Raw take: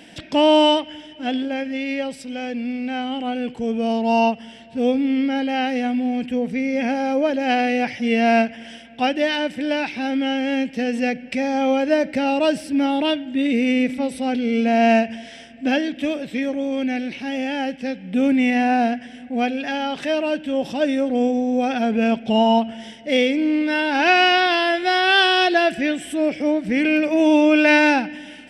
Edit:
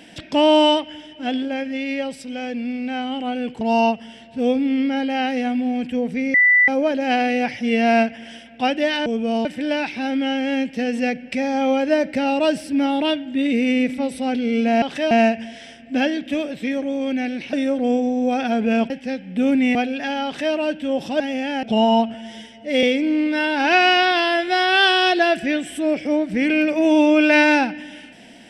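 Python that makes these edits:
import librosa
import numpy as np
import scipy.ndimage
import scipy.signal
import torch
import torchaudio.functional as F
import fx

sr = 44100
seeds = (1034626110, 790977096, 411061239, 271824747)

y = fx.edit(x, sr, fx.move(start_s=3.61, length_s=0.39, to_s=9.45),
    fx.bleep(start_s=6.73, length_s=0.34, hz=1980.0, db=-10.5),
    fx.swap(start_s=17.24, length_s=0.43, other_s=20.84, other_length_s=1.37),
    fx.cut(start_s=18.52, length_s=0.87),
    fx.duplicate(start_s=19.89, length_s=0.29, to_s=14.82),
    fx.stretch_span(start_s=22.72, length_s=0.46, factor=1.5), tone=tone)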